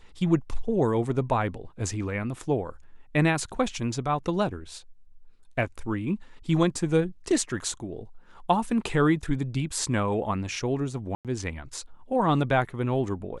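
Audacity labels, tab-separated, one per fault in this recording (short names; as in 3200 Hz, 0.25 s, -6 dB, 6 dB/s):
11.150000	11.250000	gap 97 ms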